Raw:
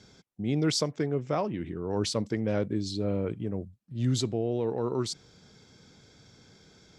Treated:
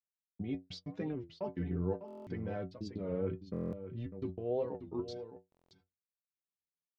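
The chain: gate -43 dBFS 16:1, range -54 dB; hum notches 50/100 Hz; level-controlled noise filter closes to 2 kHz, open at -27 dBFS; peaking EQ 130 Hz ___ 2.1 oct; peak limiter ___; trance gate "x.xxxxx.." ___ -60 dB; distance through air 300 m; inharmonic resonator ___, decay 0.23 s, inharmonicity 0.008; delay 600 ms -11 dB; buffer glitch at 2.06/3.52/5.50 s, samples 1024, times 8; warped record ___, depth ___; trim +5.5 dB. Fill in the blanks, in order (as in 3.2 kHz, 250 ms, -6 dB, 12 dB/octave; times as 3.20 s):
+2 dB, -24 dBFS, 192 bpm, 88 Hz, 33 1/3 rpm, 160 cents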